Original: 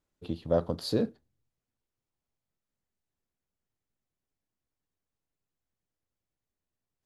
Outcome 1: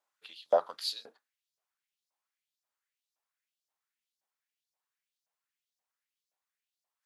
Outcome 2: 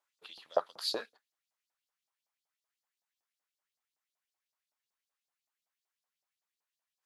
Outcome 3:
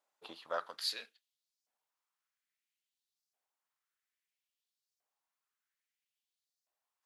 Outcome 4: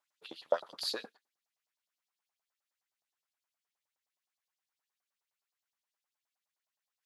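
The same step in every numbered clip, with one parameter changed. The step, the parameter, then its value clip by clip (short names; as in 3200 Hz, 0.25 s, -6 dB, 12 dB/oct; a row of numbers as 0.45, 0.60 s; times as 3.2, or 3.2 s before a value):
LFO high-pass, rate: 1.9, 5.3, 0.6, 9.6 Hz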